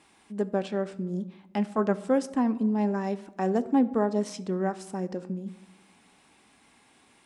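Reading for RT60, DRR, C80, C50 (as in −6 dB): 1.1 s, 12.0 dB, 19.5 dB, 17.0 dB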